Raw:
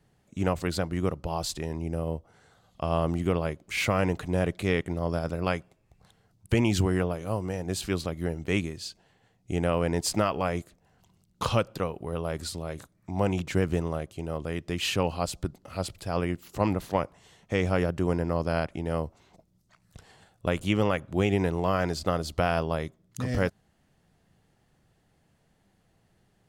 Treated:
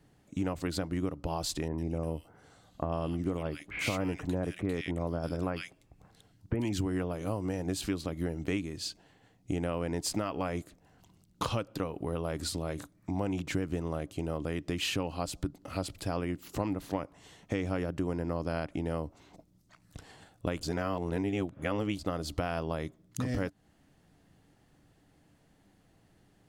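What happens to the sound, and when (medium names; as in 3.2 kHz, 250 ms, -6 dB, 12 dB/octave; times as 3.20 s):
1.68–6.73 s: bands offset in time lows, highs 100 ms, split 1.9 kHz
20.63–21.99 s: reverse
whole clip: peaking EQ 290 Hz +10.5 dB 0.21 oct; compression 5:1, threshold -31 dBFS; trim +1.5 dB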